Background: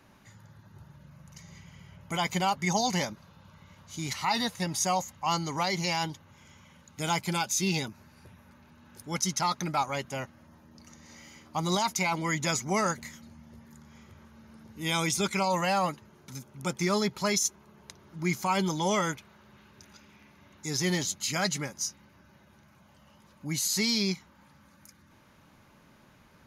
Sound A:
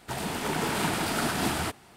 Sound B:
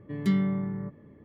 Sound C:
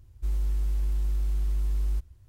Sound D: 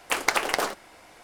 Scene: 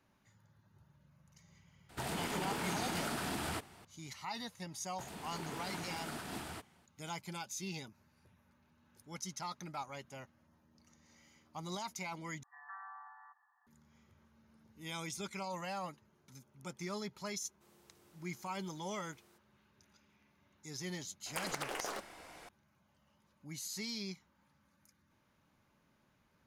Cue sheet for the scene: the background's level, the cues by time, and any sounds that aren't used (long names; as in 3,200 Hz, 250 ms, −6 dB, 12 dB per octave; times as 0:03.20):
background −14.5 dB
0:01.89: mix in A −4.5 dB + downward compressor 5 to 1, threshold −30 dBFS
0:04.90: mix in A −16 dB
0:12.43: overwrite with B −3 dB + brick-wall band-pass 700–1,900 Hz
0:17.38: mix in C −15.5 dB + Butterworth high-pass 270 Hz 96 dB per octave
0:21.26: mix in D −3 dB + downward compressor 16 to 1, threshold −32 dBFS